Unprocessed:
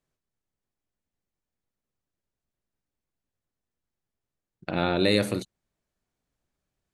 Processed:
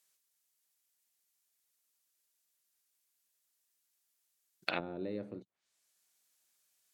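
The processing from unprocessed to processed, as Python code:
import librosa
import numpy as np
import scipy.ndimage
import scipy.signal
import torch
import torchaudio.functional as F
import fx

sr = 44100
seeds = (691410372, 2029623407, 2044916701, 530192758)

y = np.diff(x, prepend=0.0)
y = fx.env_lowpass_down(y, sr, base_hz=310.0, full_db=-40.5)
y = y * 10.0 ** (15.0 / 20.0)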